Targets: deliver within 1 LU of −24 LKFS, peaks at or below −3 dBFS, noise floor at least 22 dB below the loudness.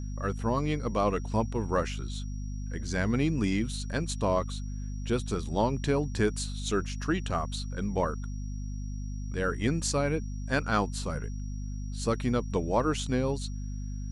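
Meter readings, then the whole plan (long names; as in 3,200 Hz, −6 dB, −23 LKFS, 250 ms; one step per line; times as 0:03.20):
mains hum 50 Hz; hum harmonics up to 250 Hz; level of the hum −33 dBFS; interfering tone 5,700 Hz; level of the tone −55 dBFS; integrated loudness −31.0 LKFS; sample peak −13.5 dBFS; target loudness −24.0 LKFS
→ hum removal 50 Hz, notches 5
notch filter 5,700 Hz, Q 30
level +7 dB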